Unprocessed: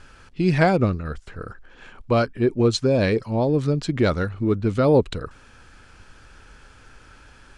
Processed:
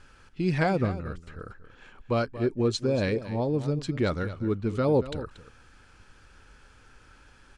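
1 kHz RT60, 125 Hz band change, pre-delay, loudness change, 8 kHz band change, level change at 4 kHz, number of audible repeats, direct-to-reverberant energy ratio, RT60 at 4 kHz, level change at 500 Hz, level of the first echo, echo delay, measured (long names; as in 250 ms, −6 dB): no reverb audible, −6.5 dB, no reverb audible, −6.5 dB, −6.5 dB, −6.5 dB, 1, no reverb audible, no reverb audible, −6.5 dB, −14.0 dB, 233 ms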